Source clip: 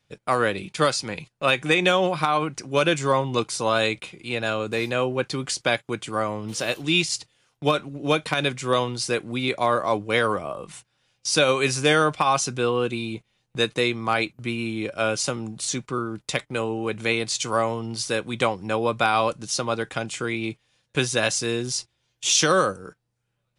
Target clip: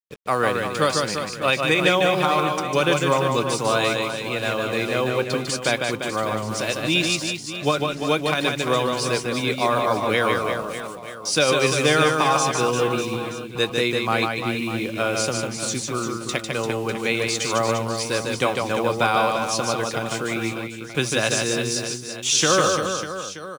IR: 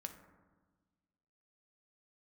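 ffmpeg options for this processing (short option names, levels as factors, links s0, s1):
-filter_complex "[0:a]acrusher=bits=6:mix=0:aa=0.5,asplit=2[s0][s1];[s1]aecho=0:1:150|345|598.5|928|1356:0.631|0.398|0.251|0.158|0.1[s2];[s0][s2]amix=inputs=2:normalize=0"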